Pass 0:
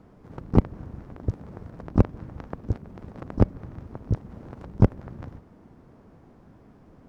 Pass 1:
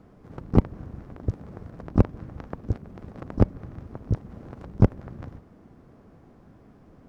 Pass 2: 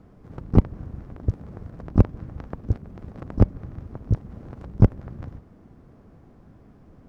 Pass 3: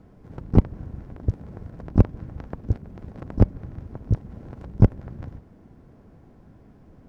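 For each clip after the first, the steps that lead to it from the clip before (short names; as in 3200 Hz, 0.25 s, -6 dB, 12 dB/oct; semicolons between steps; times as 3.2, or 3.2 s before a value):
notch 920 Hz, Q 17
low shelf 140 Hz +6.5 dB; gain -1 dB
notch 1200 Hz, Q 11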